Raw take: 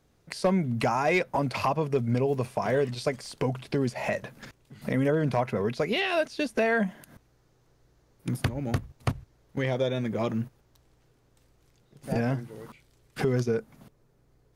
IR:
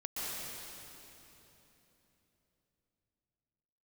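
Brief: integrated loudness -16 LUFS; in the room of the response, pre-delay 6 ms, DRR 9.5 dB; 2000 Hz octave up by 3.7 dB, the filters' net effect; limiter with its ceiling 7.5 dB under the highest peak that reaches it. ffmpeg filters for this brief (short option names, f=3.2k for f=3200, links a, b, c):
-filter_complex "[0:a]equalizer=f=2k:t=o:g=4.5,alimiter=limit=-18dB:level=0:latency=1,asplit=2[a][b];[1:a]atrim=start_sample=2205,adelay=6[c];[b][c]afir=irnorm=-1:irlink=0,volume=-13dB[d];[a][d]amix=inputs=2:normalize=0,volume=13.5dB"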